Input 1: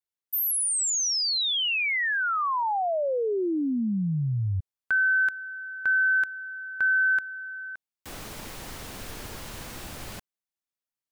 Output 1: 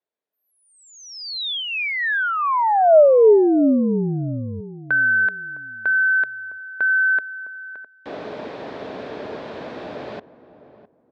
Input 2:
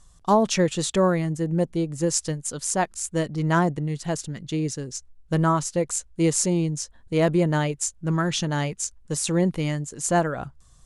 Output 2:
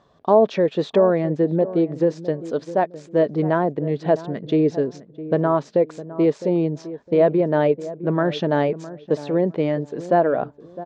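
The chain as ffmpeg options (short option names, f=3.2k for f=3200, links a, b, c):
-filter_complex "[0:a]alimiter=limit=-19.5dB:level=0:latency=1:release=343,highpass=200,equalizer=f=270:t=q:w=4:g=4,equalizer=f=430:t=q:w=4:g=8,equalizer=f=620:t=q:w=4:g=9,equalizer=f=1.3k:t=q:w=4:g=-4,equalizer=f=2.1k:t=q:w=4:g=-5,equalizer=f=2.9k:t=q:w=4:g=-8,lowpass=f=3.3k:w=0.5412,lowpass=f=3.3k:w=1.3066,asplit=2[a][b];[b]adelay=659,lowpass=f=880:p=1,volume=-14dB,asplit=2[c][d];[d]adelay=659,lowpass=f=880:p=1,volume=0.27,asplit=2[e][f];[f]adelay=659,lowpass=f=880:p=1,volume=0.27[g];[a][c][e][g]amix=inputs=4:normalize=0,volume=7.5dB"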